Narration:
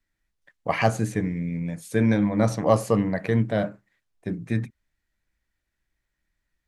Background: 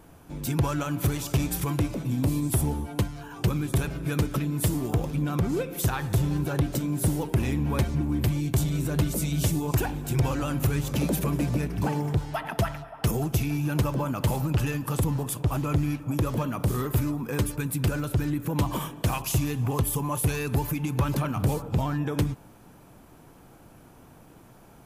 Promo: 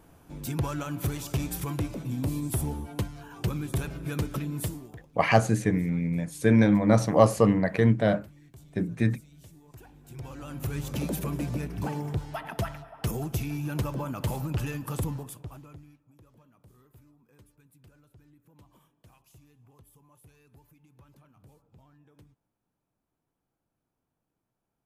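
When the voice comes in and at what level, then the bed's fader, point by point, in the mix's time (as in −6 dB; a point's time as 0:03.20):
4.50 s, +1.0 dB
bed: 0:04.60 −4.5 dB
0:05.09 −27 dB
0:09.67 −27 dB
0:10.82 −5 dB
0:15.06 −5 dB
0:16.08 −32 dB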